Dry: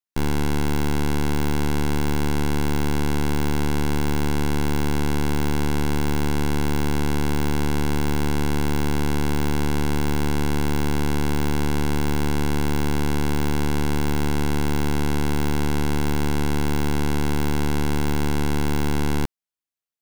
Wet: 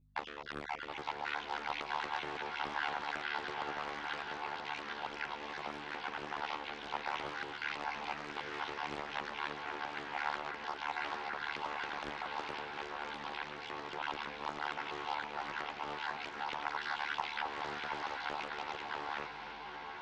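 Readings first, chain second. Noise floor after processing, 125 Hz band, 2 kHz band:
-47 dBFS, -36.0 dB, -7.0 dB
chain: random spectral dropouts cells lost 50%; limiter -23.5 dBFS, peak gain reduction 8.5 dB; compressor, threshold -33 dBFS, peak gain reduction 7.5 dB; BPF 710–6500 Hz; hum 50 Hz, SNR 26 dB; air absorption 280 m; chorus voices 2, 0.87 Hz, delay 13 ms, depth 2.1 ms; diffused feedback echo 0.885 s, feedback 48%, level -4.5 dB; Doppler distortion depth 0.59 ms; gain +8.5 dB

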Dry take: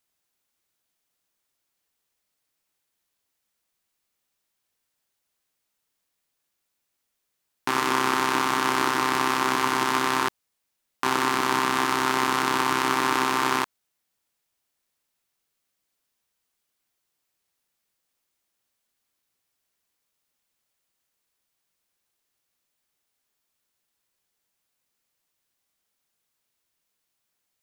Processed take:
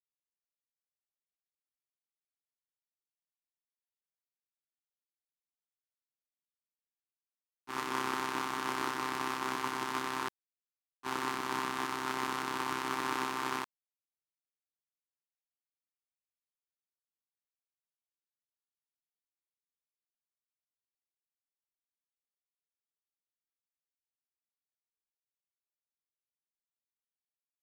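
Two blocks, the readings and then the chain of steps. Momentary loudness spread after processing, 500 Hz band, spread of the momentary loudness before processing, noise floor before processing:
5 LU, -12.0 dB, 4 LU, -79 dBFS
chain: expander -16 dBFS; gain -5 dB

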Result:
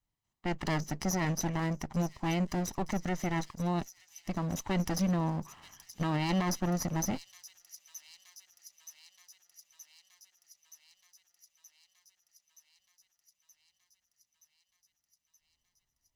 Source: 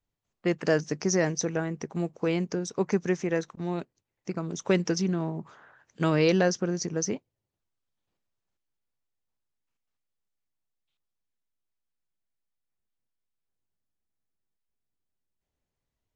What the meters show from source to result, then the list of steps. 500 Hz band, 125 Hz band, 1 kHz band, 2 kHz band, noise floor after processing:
-11.0 dB, -1.0 dB, +1.5 dB, -5.5 dB, -84 dBFS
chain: minimum comb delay 1 ms; on a send: thin delay 0.924 s, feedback 73%, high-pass 5300 Hz, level -12 dB; on the sum: limiter -23 dBFS, peak gain reduction 10 dB

